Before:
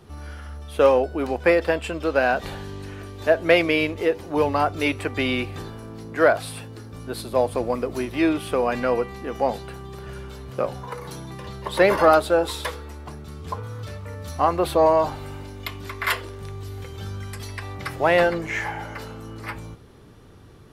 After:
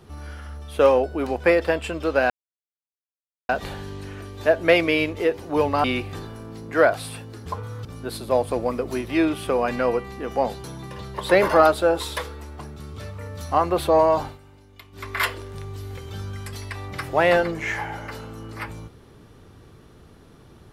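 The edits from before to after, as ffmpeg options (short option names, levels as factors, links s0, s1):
-filter_complex "[0:a]asplit=9[s0][s1][s2][s3][s4][s5][s6][s7][s8];[s0]atrim=end=2.3,asetpts=PTS-STARTPTS,afade=t=out:st=2.296:d=0.004:c=hsin,apad=pad_dur=1.19[s9];[s1]atrim=start=2.3:end=4.652,asetpts=PTS-STARTPTS,afade=t=in:d=0.004:c=hsin[s10];[s2]atrim=start=5.268:end=6.892[s11];[s3]atrim=start=13.458:end=13.852[s12];[s4]atrim=start=6.888:end=9.682[s13];[s5]atrim=start=11.118:end=13.462[s14];[s6]atrim=start=13.848:end=15.25,asetpts=PTS-STARTPTS,afade=t=out:st=1.272:d=0.13:silence=0.199526[s15];[s7]atrim=start=15.25:end=15.79,asetpts=PTS-STARTPTS,volume=0.2[s16];[s8]atrim=start=15.79,asetpts=PTS-STARTPTS,afade=t=in:d=0.13:silence=0.199526[s17];[s9][s10]concat=n=2:v=0:a=1[s18];[s18][s11]acrossfade=d=0.004:c1=hsin:c2=hsin[s19];[s19][s12]acrossfade=d=0.004:c1=hsin:c2=hsin[s20];[s20][s13]acrossfade=d=0.004:c1=hsin:c2=hsin[s21];[s21][s14]acrossfade=d=0.004:c1=hsin:c2=hsin[s22];[s15][s16][s17]concat=n=3:v=0:a=1[s23];[s22][s23]acrossfade=d=0.004:c1=hsin:c2=hsin"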